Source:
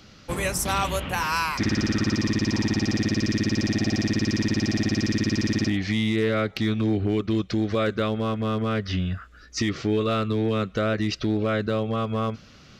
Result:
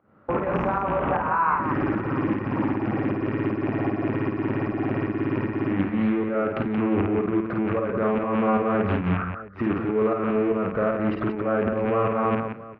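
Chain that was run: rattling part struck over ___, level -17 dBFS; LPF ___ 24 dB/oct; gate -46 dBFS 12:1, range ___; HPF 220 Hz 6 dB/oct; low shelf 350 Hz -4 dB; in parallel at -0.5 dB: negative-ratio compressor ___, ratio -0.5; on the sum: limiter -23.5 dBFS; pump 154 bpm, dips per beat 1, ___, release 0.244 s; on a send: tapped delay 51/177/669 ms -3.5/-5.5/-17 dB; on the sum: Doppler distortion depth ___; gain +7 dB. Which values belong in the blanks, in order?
-30 dBFS, 1300 Hz, -15 dB, -32 dBFS, -14 dB, 0.22 ms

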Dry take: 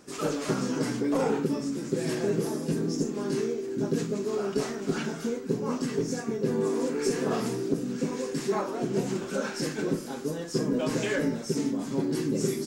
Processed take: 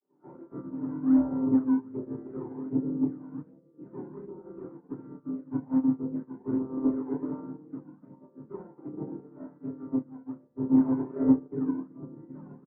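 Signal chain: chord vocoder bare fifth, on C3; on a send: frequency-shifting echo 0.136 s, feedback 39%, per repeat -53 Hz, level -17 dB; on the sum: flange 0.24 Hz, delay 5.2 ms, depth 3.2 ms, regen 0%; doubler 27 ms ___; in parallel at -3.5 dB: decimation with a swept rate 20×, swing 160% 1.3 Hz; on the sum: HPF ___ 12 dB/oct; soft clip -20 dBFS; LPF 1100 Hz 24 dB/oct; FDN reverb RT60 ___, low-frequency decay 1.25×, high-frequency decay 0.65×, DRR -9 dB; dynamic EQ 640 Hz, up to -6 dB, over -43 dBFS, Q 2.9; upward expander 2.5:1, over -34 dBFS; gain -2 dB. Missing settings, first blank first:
-2.5 dB, 240 Hz, 0.3 s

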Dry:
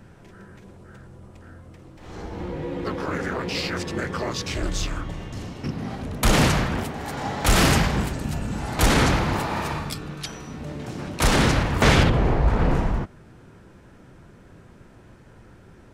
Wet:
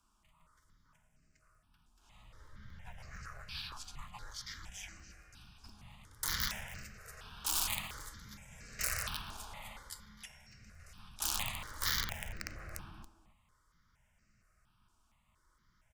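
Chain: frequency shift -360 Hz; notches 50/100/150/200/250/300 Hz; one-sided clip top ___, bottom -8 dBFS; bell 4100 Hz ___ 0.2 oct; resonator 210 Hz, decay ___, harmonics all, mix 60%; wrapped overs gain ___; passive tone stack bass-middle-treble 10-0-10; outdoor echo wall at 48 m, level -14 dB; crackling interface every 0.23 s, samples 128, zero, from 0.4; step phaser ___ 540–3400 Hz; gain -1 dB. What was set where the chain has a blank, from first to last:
-13.5 dBFS, -5 dB, 0.41 s, 18 dB, 4.3 Hz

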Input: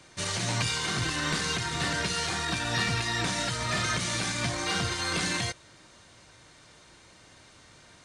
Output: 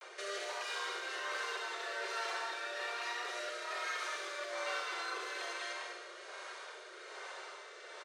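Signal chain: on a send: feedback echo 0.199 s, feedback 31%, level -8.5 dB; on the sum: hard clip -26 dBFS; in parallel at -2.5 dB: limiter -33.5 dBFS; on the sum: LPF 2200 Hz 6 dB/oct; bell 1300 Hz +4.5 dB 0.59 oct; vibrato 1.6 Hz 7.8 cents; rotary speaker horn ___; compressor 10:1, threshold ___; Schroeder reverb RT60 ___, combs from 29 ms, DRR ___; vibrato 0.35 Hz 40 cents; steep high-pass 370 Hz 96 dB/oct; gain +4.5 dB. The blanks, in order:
1.2 Hz, -41 dBFS, 1 s, 3 dB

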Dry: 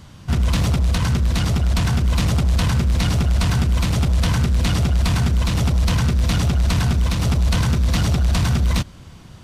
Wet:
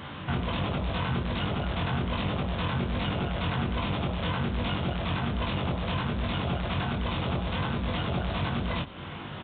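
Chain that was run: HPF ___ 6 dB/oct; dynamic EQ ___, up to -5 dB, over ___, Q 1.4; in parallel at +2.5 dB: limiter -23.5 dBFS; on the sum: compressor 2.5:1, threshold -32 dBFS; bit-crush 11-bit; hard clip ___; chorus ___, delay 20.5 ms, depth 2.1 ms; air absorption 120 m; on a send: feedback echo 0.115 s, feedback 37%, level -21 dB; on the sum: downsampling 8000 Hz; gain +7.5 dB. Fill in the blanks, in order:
460 Hz, 1800 Hz, -42 dBFS, -28 dBFS, 1.3 Hz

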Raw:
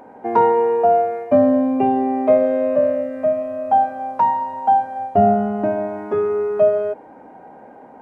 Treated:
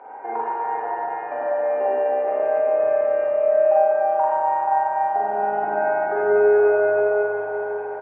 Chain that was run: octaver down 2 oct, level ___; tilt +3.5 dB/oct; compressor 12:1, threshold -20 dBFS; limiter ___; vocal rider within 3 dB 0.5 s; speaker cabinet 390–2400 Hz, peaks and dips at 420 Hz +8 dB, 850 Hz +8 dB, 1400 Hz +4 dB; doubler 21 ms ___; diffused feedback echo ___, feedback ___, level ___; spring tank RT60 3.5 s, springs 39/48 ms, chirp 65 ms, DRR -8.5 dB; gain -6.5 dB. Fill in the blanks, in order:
+1 dB, -20 dBFS, -11 dB, 0.469 s, 41%, -4 dB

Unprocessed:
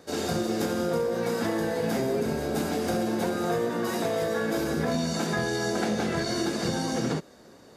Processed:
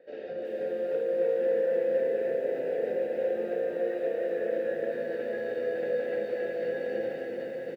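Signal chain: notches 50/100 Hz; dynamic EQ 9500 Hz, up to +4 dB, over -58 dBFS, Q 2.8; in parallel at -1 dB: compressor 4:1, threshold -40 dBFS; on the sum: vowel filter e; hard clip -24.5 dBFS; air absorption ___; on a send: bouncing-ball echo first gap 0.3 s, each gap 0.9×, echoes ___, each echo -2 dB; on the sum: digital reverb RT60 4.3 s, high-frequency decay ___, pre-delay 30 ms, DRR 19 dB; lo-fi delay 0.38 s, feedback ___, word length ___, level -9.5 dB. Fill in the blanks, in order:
300 m, 8, 0.65×, 55%, 10-bit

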